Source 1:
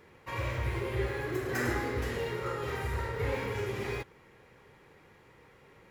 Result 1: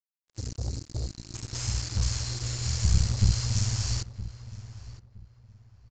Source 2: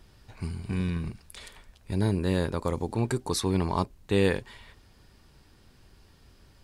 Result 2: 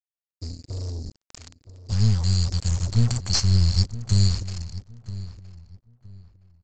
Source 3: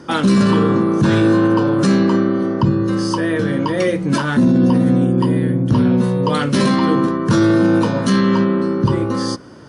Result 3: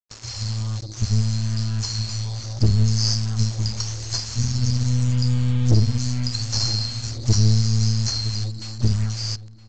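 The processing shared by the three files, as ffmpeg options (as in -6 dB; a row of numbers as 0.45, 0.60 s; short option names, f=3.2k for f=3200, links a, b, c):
-filter_complex "[0:a]afftfilt=real='re*(1-between(b*sr/4096,120,4100))':imag='im*(1-between(b*sr/4096,120,4100))':win_size=4096:overlap=0.75,acrossover=split=3600[a][b];[b]acompressor=threshold=-46dB:ratio=4:attack=1:release=60[c];[a][c]amix=inputs=2:normalize=0,bass=f=250:g=2,treble=f=4k:g=14,dynaudnorm=f=600:g=7:m=13.5dB,aeval=exprs='(tanh(5.62*val(0)+0.8)-tanh(0.8))/5.62':c=same,aresample=16000,acrusher=bits=5:mix=0:aa=0.5,aresample=44100,asplit=2[d][e];[e]adelay=967,lowpass=f=2k:p=1,volume=-14.5dB,asplit=2[f][g];[g]adelay=967,lowpass=f=2k:p=1,volume=0.27,asplit=2[h][i];[i]adelay=967,lowpass=f=2k:p=1,volume=0.27[j];[d][f][h][j]amix=inputs=4:normalize=0,volume=3dB"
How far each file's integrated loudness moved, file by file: +4.0, +5.5, -7.0 LU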